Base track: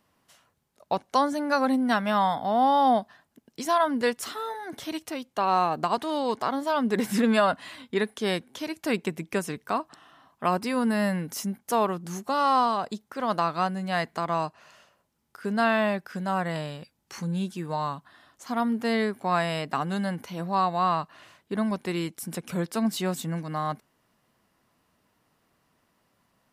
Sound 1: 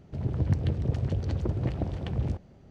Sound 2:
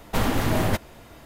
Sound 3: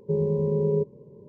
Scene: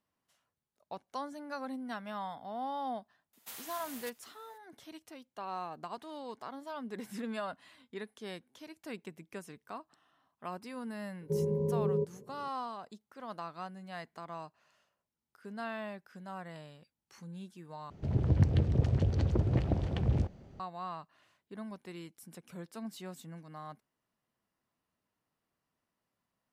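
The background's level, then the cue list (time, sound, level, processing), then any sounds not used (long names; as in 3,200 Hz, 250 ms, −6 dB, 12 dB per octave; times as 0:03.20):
base track −16.5 dB
0:03.33: mix in 2 −11 dB + first difference
0:11.21: mix in 3 −7 dB
0:17.90: overwrite with 1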